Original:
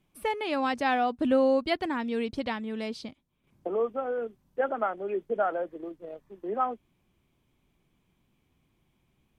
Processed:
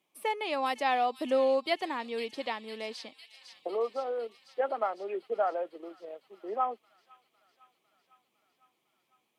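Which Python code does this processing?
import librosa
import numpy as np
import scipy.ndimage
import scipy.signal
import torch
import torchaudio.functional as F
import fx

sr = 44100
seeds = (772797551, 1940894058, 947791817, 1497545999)

y = scipy.signal.sosfilt(scipy.signal.butter(2, 460.0, 'highpass', fs=sr, output='sos'), x)
y = fx.peak_eq(y, sr, hz=1500.0, db=-9.5, octaves=0.29)
y = fx.echo_wet_highpass(y, sr, ms=504, feedback_pct=68, hz=3600.0, wet_db=-7.5)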